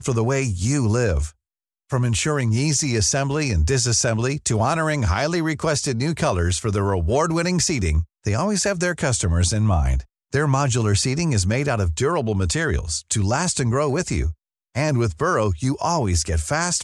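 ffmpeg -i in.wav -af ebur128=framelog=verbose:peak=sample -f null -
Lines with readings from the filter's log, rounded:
Integrated loudness:
  I:         -21.2 LUFS
  Threshold: -31.3 LUFS
Loudness range:
  LRA:         1.9 LU
  Threshold: -41.2 LUFS
  LRA low:   -22.2 LUFS
  LRA high:  -20.2 LUFS
Sample peak:
  Peak:       -6.4 dBFS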